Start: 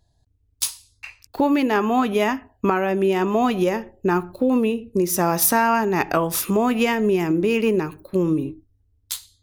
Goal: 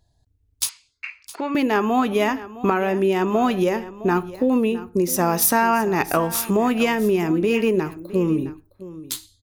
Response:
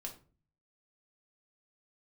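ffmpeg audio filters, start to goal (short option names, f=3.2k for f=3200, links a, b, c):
-filter_complex "[0:a]asettb=1/sr,asplit=3[a][b][c];[a]atrim=end=0.694[d];[b]atrim=start=0.69:end=1.55,asetpts=PTS-STARTPTS,afade=t=in:d=0.004:c=qsin,afade=t=out:st=0.856:d=0.004:c=qsin,highpass=440,equalizer=f=510:t=q:w=4:g=-9,equalizer=f=810:t=q:w=4:g=-9,equalizer=f=1.4k:t=q:w=4:g=6,equalizer=f=2.2k:t=q:w=4:g=10,equalizer=f=3.8k:t=q:w=4:g=-5,equalizer=f=5.6k:t=q:w=4:g=-8,lowpass=f=6.1k:w=0.5412,lowpass=f=6.1k:w=1.3066[e];[c]atrim=start=1.546[f];[d][e]acrossfade=d=0.004:c1=hsin:c2=qsin[g];[g][f]acrossfade=d=0.004:c1=qsin:c2=hsin,asplit=2[h][i];[i]aecho=0:1:662:0.15[j];[h][j]amix=inputs=2:normalize=0"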